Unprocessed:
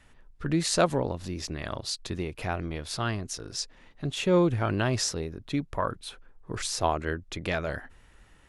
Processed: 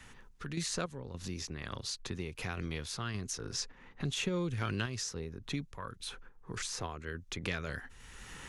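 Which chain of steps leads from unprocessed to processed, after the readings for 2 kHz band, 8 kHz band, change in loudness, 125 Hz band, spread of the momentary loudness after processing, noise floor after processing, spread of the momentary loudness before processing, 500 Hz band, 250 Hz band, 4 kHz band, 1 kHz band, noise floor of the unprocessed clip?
−5.5 dB, −5.5 dB, −9.0 dB, −7.5 dB, 10 LU, −57 dBFS, 11 LU, −13.0 dB, −10.0 dB, −5.5 dB, −12.5 dB, −57 dBFS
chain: dynamic equaliser 840 Hz, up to −6 dB, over −46 dBFS, Q 3.3
sample-and-hold tremolo 3.5 Hz, depth 85%
in parallel at −7 dB: soft clipping −21.5 dBFS, distortion −16 dB
on the sum: thirty-one-band graphic EQ 315 Hz −6 dB, 630 Hz −11 dB, 6,300 Hz +5 dB
multiband upward and downward compressor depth 70%
level −4.5 dB

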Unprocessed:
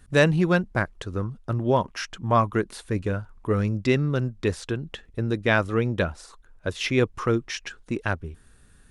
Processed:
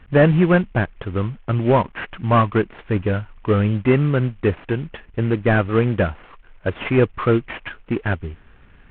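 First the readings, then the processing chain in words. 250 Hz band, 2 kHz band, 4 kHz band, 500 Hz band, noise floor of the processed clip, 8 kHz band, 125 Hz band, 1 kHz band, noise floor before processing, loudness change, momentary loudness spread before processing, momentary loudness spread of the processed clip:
+6.0 dB, +2.0 dB, −2.5 dB, +5.5 dB, −49 dBFS, below −40 dB, +6.5 dB, +4.0 dB, −55 dBFS, +5.5 dB, 11 LU, 11 LU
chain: variable-slope delta modulation 16 kbit/s
level +6.5 dB

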